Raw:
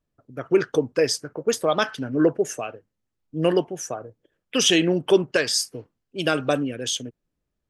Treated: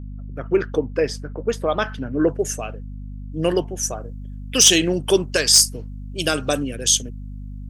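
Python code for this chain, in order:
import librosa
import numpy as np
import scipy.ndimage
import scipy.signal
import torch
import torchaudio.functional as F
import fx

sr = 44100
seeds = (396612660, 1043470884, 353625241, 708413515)

y = fx.bass_treble(x, sr, bass_db=0, treble_db=fx.steps((0.0, -10.0), (2.27, 7.0), (3.82, 14.0)))
y = fx.add_hum(y, sr, base_hz=50, snr_db=11)
y = np.clip(y, -10.0 ** (-5.0 / 20.0), 10.0 ** (-5.0 / 20.0))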